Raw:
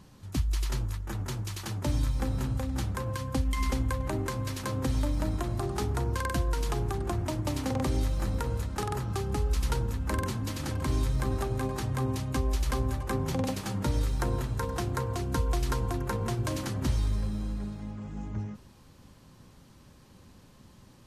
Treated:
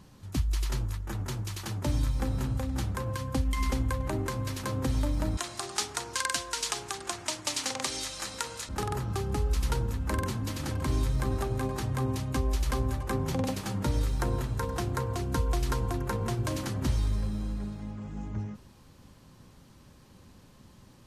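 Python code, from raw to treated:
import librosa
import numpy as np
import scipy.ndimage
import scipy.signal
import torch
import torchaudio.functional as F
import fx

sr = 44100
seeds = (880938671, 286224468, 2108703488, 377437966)

y = fx.weighting(x, sr, curve='ITU-R 468', at=(5.37, 8.69))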